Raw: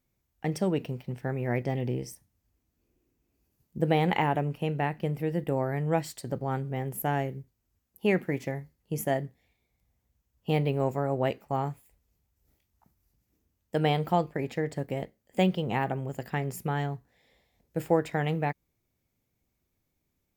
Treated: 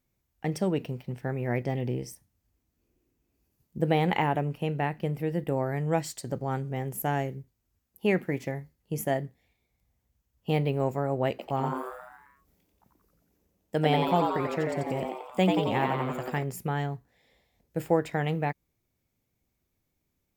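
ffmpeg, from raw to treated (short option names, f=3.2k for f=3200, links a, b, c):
-filter_complex "[0:a]asettb=1/sr,asplit=3[a][b][c];[a]atrim=end=5.664[d];[b]atrim=start=5.66:end=7.35,asetpts=PTS-STARTPTS,afade=t=in:d=0.004:c=qsin,afade=t=out:st=1.686:d=0.004:c=qsin,equalizer=f=6.6k:t=o:w=0.77:g=5.5[e];[c]atrim=start=7.346[f];[d][e]acrossfade=d=0.004:c1=hsin:c2=qsin[g];[g][f]acrossfade=d=0.004:c1=qsin:c2=hsin,asettb=1/sr,asplit=3[h][i][j];[h]atrim=end=11.304[k];[i]atrim=start=11.3:end=16.43,asetpts=PTS-STARTPTS,afade=t=in:d=0.004:c=qsin,afade=t=out:st=5.126:d=0.004:c=qsin,asplit=9[l][m][n][o][p][q][r][s][t];[m]adelay=89,afreqshift=120,volume=-4dB[u];[n]adelay=178,afreqshift=240,volume=-8.6dB[v];[o]adelay=267,afreqshift=360,volume=-13.2dB[w];[p]adelay=356,afreqshift=480,volume=-17.7dB[x];[q]adelay=445,afreqshift=600,volume=-22.3dB[y];[r]adelay=534,afreqshift=720,volume=-26.9dB[z];[s]adelay=623,afreqshift=840,volume=-31.5dB[aa];[t]adelay=712,afreqshift=960,volume=-36.1dB[ab];[l][u][v][w][x][y][z][aa][ab]amix=inputs=9:normalize=0,atrim=end_sample=226233[ac];[j]atrim=start=16.426[ad];[k][ac]acrossfade=d=0.004:c1=hsin:c2=qsin[ae];[ae][ad]acrossfade=d=0.004:c1=qsin:c2=hsin"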